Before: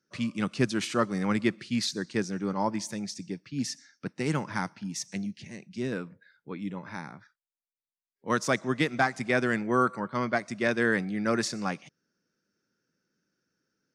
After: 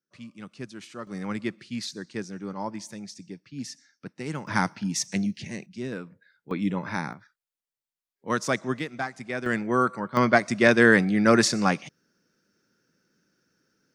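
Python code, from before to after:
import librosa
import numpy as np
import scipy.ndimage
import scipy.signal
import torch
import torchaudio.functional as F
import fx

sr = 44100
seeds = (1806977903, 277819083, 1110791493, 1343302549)

y = fx.gain(x, sr, db=fx.steps((0.0, -12.5), (1.07, -4.5), (4.47, 7.0), (5.66, -1.5), (6.51, 8.5), (7.13, 0.5), (8.79, -6.0), (9.46, 1.5), (10.17, 8.5)))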